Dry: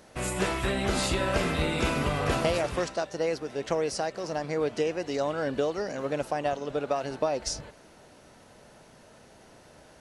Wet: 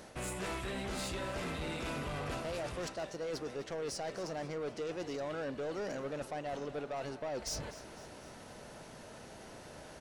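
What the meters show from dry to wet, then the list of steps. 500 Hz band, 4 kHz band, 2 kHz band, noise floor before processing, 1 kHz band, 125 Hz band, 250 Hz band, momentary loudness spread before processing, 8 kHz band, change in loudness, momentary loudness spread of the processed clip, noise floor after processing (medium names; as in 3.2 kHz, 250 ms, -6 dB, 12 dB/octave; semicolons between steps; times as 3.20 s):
-10.5 dB, -9.5 dB, -10.0 dB, -54 dBFS, -10.5 dB, -10.5 dB, -10.0 dB, 5 LU, -8.0 dB, -10.5 dB, 12 LU, -51 dBFS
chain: reverse; compression 10:1, threshold -35 dBFS, peak gain reduction 15 dB; reverse; saturation -37 dBFS, distortion -12 dB; feedback delay 252 ms, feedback 53%, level -16.5 dB; trim +3 dB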